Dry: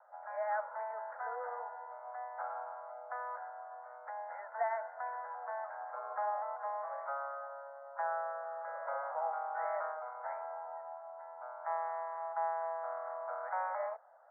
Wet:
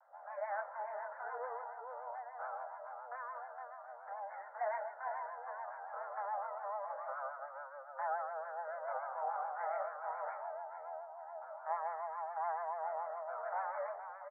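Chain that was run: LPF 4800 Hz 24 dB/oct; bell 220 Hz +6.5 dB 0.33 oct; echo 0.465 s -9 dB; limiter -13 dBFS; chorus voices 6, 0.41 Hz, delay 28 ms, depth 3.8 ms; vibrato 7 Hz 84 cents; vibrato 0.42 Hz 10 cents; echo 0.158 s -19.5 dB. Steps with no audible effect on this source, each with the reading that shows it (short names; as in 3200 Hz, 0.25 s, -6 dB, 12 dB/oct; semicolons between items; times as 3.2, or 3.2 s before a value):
LPF 4800 Hz: input band ends at 2000 Hz; bell 220 Hz: input band starts at 450 Hz; limiter -13 dBFS: input peak -23.5 dBFS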